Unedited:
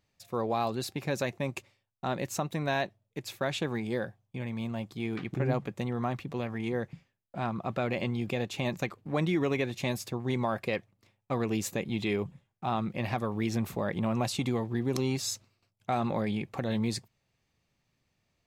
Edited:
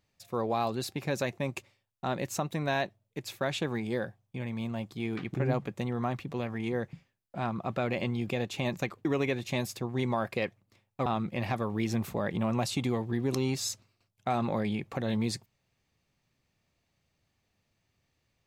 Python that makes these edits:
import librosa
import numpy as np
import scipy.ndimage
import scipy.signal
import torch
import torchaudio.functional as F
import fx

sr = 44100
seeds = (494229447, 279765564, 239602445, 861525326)

y = fx.edit(x, sr, fx.cut(start_s=9.05, length_s=0.31),
    fx.cut(start_s=11.37, length_s=1.31), tone=tone)